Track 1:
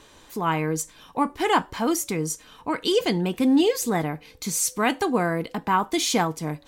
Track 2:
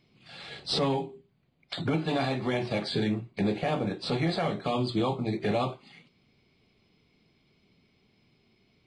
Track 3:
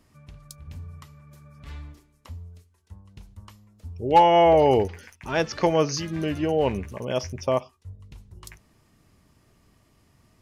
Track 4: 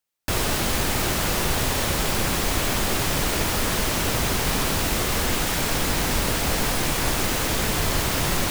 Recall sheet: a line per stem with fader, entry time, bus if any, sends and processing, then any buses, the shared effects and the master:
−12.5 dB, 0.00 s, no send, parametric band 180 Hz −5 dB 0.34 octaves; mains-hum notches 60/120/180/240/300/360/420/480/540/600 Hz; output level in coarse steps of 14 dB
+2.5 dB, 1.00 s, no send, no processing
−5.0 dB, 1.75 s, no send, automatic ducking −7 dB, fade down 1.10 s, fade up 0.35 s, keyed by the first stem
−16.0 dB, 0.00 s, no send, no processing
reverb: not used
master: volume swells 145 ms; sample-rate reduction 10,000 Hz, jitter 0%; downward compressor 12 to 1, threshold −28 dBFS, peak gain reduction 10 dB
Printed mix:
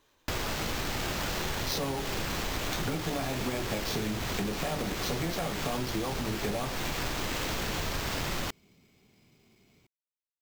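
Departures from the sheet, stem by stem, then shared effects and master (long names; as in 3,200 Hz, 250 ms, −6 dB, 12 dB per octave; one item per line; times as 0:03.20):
stem 3: muted
stem 4 −16.0 dB → −6.0 dB
master: missing volume swells 145 ms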